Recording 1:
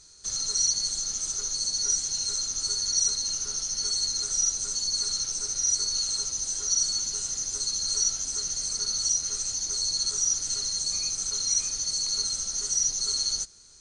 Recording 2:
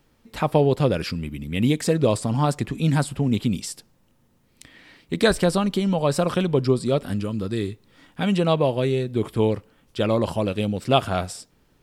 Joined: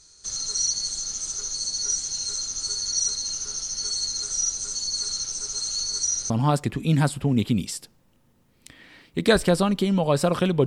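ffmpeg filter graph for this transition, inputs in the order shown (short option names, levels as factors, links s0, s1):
-filter_complex "[0:a]apad=whole_dur=10.66,atrim=end=10.66,asplit=2[s0][s1];[s0]atrim=end=5.482[s2];[s1]atrim=start=5.478:end=6.302,asetpts=PTS-STARTPTS,areverse[s3];[1:a]atrim=start=2.248:end=6.61[s4];[s2][s3]acrossfade=d=0.004:c1=hsin:c2=hsin[s5];[s5][s4]acrossfade=d=0.004:c1=hsin:c2=hsin"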